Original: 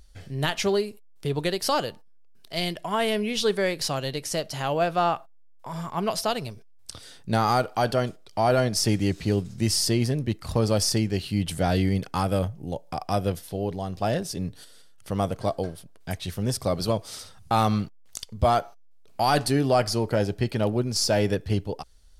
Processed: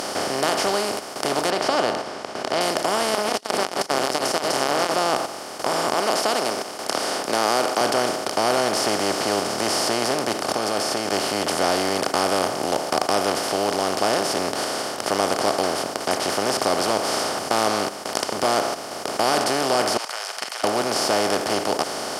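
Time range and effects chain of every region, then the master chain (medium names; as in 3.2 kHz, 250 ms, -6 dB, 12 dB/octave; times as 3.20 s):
1.50–2.61 s: low-pass 3.2 kHz 24 dB/octave + peaking EQ 650 Hz +8 dB 0.34 oct
3.14–4.94 s: backward echo that repeats 143 ms, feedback 43%, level -9 dB + bass shelf 240 Hz -3.5 dB + transformer saturation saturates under 1.6 kHz
5.94–7.81 s: Bessel high-pass 380 Hz, order 4 + de-esser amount 35%
10.41–11.12 s: comb of notches 980 Hz + level held to a coarse grid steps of 18 dB
19.97–20.64 s: Bessel high-pass 2.7 kHz, order 8 + level held to a coarse grid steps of 20 dB + distance through air 54 m
whole clip: spectral levelling over time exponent 0.2; high-pass 270 Hz 12 dB/octave; trim -5.5 dB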